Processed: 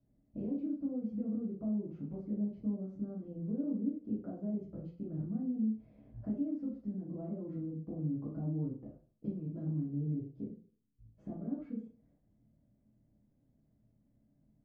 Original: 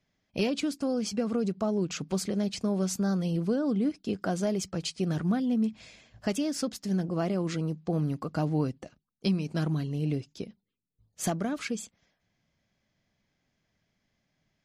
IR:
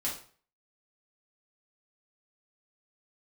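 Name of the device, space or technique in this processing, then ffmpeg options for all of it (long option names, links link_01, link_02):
television next door: -filter_complex "[0:a]acompressor=threshold=-47dB:ratio=3,lowpass=360[link_01];[1:a]atrim=start_sample=2205[link_02];[link_01][link_02]afir=irnorm=-1:irlink=0,volume=3.5dB"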